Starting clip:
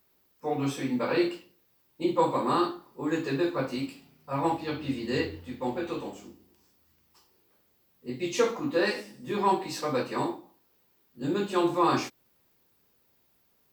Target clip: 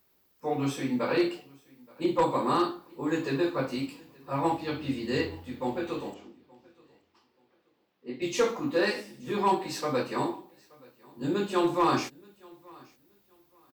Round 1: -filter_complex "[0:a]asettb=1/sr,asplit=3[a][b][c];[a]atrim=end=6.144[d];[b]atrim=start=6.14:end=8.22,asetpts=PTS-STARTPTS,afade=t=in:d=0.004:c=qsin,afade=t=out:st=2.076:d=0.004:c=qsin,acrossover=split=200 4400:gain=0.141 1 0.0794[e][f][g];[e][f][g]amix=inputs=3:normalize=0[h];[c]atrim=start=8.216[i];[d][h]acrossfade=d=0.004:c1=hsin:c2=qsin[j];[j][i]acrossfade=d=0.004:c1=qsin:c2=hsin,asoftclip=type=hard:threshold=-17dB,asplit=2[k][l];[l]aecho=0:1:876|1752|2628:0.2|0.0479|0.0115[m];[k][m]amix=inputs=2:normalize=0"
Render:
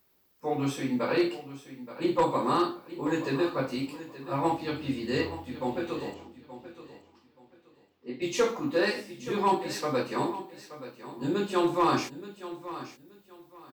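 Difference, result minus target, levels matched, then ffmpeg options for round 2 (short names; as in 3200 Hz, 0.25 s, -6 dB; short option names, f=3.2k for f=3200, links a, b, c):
echo-to-direct +11.5 dB
-filter_complex "[0:a]asettb=1/sr,asplit=3[a][b][c];[a]atrim=end=6.144[d];[b]atrim=start=6.14:end=8.22,asetpts=PTS-STARTPTS,afade=t=in:d=0.004:c=qsin,afade=t=out:st=2.076:d=0.004:c=qsin,acrossover=split=200 4400:gain=0.141 1 0.0794[e][f][g];[e][f][g]amix=inputs=3:normalize=0[h];[c]atrim=start=8.216[i];[d][h]acrossfade=d=0.004:c1=hsin:c2=qsin[j];[j][i]acrossfade=d=0.004:c1=qsin:c2=hsin,asoftclip=type=hard:threshold=-17dB,asplit=2[k][l];[l]aecho=0:1:876|1752:0.0531|0.0127[m];[k][m]amix=inputs=2:normalize=0"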